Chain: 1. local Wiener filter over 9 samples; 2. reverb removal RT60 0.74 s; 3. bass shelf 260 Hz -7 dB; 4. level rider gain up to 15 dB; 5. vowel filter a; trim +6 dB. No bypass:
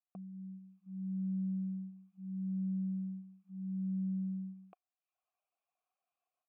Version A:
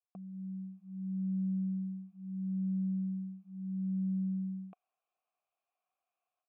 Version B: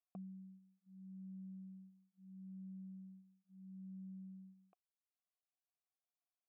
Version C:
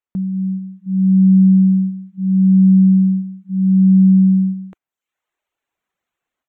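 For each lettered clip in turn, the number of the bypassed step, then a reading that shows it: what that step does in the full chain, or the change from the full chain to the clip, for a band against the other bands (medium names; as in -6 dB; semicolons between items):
2, momentary loudness spread change -3 LU; 4, crest factor change +6.5 dB; 5, loudness change +26.0 LU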